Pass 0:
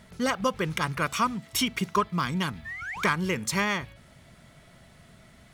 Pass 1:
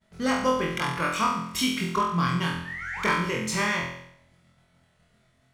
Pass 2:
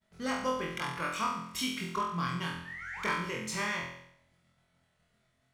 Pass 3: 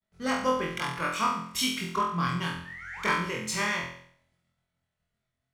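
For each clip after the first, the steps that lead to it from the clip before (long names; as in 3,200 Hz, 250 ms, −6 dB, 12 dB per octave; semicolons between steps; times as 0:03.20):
downward expander −44 dBFS; high-shelf EQ 11,000 Hz −8 dB; on a send: flutter between parallel walls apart 4 metres, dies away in 0.68 s; on the sum: level −2.5 dB
low-shelf EQ 470 Hz −3 dB; level −7 dB
multiband upward and downward expander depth 40%; level +4.5 dB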